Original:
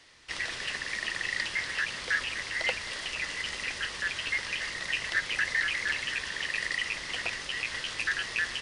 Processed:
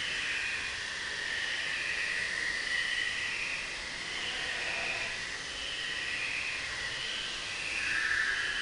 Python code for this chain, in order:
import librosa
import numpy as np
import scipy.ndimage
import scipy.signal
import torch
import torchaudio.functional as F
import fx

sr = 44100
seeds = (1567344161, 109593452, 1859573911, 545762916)

y = fx.paulstretch(x, sr, seeds[0], factor=4.0, window_s=0.25, from_s=6.06)
y = y * librosa.db_to_amplitude(-1.0)